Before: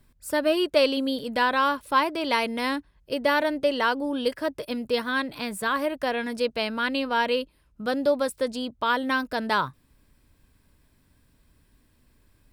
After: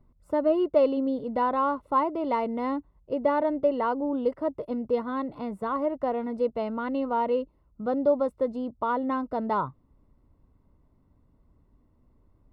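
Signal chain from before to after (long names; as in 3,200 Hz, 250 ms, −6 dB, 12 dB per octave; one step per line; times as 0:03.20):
Savitzky-Golay smoothing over 65 samples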